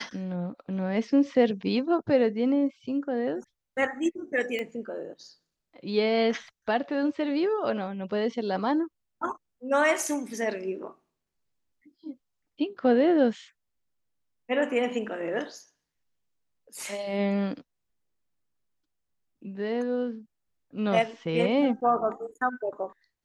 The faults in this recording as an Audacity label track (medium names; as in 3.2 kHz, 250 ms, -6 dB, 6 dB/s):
4.590000	4.590000	pop -20 dBFS